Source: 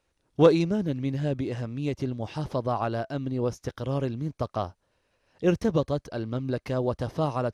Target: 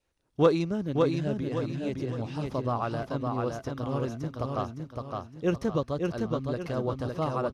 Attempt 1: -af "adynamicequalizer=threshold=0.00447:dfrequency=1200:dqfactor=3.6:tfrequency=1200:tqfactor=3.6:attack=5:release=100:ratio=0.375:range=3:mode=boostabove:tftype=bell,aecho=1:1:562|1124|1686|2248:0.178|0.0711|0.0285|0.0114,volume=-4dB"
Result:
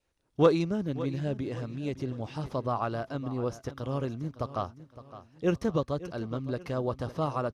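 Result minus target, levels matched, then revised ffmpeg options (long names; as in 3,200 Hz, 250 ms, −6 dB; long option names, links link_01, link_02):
echo-to-direct −11.5 dB
-af "adynamicequalizer=threshold=0.00447:dfrequency=1200:dqfactor=3.6:tfrequency=1200:tqfactor=3.6:attack=5:release=100:ratio=0.375:range=3:mode=boostabove:tftype=bell,aecho=1:1:562|1124|1686|2248|2810:0.668|0.267|0.107|0.0428|0.0171,volume=-4dB"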